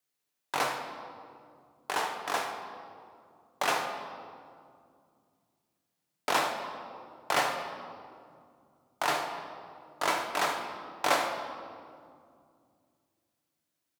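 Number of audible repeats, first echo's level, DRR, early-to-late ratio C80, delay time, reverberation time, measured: 1, -13.0 dB, 2.5 dB, 7.0 dB, 74 ms, 2.3 s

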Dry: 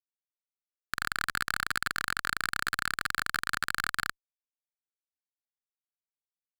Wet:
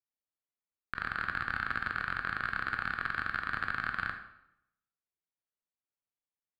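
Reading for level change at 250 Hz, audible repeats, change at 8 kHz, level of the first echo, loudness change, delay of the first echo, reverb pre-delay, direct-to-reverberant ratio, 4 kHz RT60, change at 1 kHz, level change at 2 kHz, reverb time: +0.5 dB, no echo, under -25 dB, no echo, -3.0 dB, no echo, 14 ms, 5.0 dB, 0.65 s, -1.5 dB, -2.0 dB, 0.80 s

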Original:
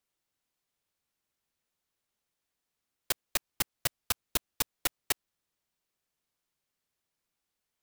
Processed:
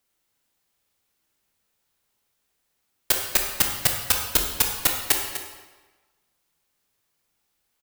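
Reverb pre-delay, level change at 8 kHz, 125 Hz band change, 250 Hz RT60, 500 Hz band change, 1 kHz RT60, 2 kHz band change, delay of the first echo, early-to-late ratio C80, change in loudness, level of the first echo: 15 ms, +10.5 dB, +9.5 dB, 1.2 s, +9.5 dB, 1.3 s, +9.5 dB, 249 ms, 5.0 dB, +11.5 dB, -12.0 dB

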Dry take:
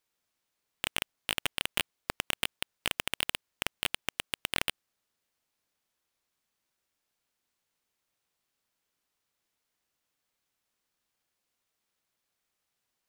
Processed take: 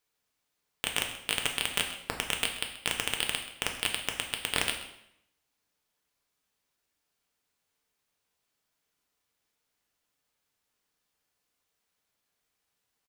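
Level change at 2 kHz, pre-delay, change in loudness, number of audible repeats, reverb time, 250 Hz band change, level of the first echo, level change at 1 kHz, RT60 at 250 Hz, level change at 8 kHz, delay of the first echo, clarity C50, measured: +2.0 dB, 3 ms, +2.5 dB, 1, 0.80 s, +2.0 dB, -16.5 dB, +2.0 dB, 0.80 s, +4.5 dB, 131 ms, 7.5 dB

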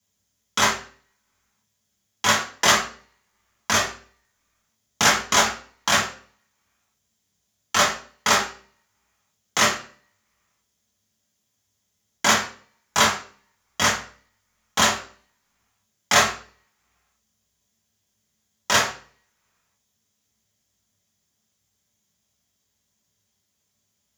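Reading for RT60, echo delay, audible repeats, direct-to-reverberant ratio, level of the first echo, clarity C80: 0.45 s, no echo, no echo, -6.0 dB, no echo, 12.5 dB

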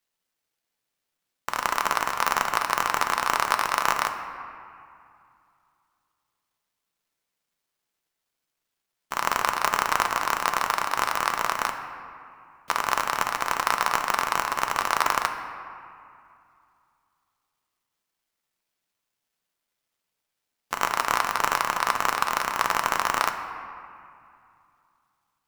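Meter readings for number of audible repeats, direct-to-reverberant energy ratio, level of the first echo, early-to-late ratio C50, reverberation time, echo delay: no echo, 5.0 dB, no echo, 7.5 dB, 2.4 s, no echo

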